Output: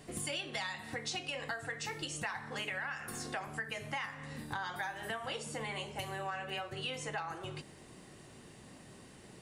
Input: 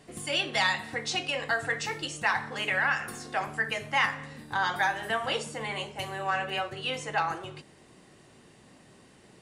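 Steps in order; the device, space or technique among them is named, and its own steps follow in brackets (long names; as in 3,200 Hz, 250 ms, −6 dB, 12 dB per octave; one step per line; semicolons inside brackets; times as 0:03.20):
ASMR close-microphone chain (low-shelf EQ 140 Hz +5 dB; downward compressor 6 to 1, threshold −37 dBFS, peak gain reduction 15.5 dB; high-shelf EQ 9,600 Hz +7 dB)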